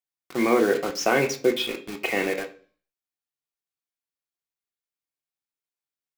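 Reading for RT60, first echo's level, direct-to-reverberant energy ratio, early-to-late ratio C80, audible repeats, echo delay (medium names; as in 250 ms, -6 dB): 0.45 s, no echo, 3.0 dB, 18.0 dB, no echo, no echo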